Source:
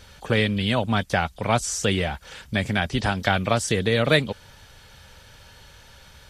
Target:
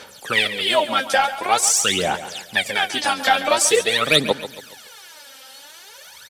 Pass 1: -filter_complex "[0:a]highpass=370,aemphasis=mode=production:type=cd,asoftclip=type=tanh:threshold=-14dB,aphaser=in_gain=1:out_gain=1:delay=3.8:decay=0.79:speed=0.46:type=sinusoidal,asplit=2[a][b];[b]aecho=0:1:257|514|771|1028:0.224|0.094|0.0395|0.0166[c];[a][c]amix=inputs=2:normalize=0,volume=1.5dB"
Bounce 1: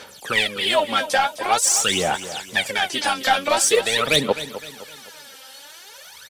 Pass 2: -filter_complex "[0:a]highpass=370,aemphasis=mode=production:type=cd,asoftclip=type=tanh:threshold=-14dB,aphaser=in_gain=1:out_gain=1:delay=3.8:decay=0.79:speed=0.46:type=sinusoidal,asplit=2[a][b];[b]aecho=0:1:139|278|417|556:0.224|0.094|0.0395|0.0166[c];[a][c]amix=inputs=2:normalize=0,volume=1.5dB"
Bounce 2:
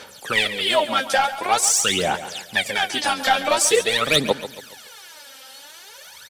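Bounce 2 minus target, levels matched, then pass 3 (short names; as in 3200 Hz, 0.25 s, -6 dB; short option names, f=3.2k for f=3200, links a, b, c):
soft clip: distortion +11 dB
-filter_complex "[0:a]highpass=370,aemphasis=mode=production:type=cd,asoftclip=type=tanh:threshold=-6dB,aphaser=in_gain=1:out_gain=1:delay=3.8:decay=0.79:speed=0.46:type=sinusoidal,asplit=2[a][b];[b]aecho=0:1:139|278|417|556:0.224|0.094|0.0395|0.0166[c];[a][c]amix=inputs=2:normalize=0,volume=1.5dB"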